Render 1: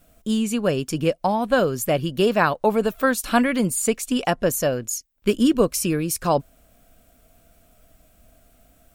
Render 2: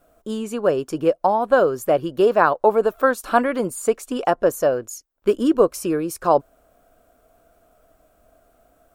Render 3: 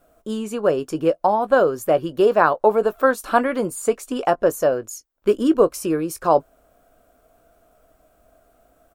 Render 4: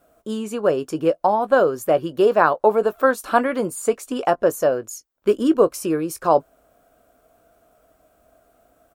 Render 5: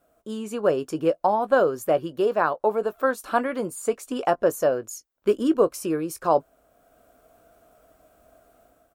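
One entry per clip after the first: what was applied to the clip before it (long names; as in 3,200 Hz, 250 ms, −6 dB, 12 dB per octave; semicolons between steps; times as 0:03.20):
flat-topped bell 690 Hz +11.5 dB 2.6 octaves; level −7.5 dB
double-tracking delay 19 ms −14 dB
high-pass filter 67 Hz 6 dB per octave
automatic gain control gain up to 7.5 dB; level −6.5 dB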